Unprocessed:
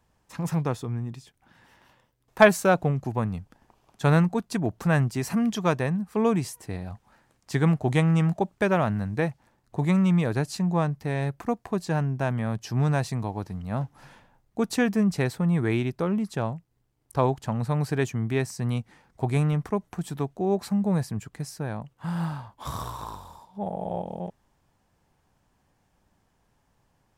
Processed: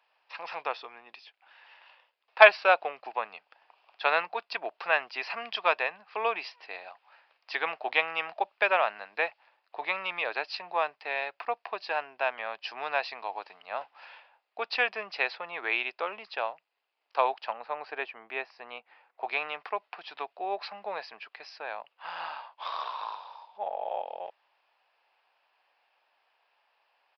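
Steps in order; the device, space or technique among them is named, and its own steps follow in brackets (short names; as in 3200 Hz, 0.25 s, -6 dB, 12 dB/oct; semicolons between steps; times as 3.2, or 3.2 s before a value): 17.53–19.25 LPF 1200 Hz 6 dB/oct; musical greeting card (downsampling 11025 Hz; HPF 610 Hz 24 dB/oct; bell 2600 Hz +10 dB 0.39 oct); gain +1.5 dB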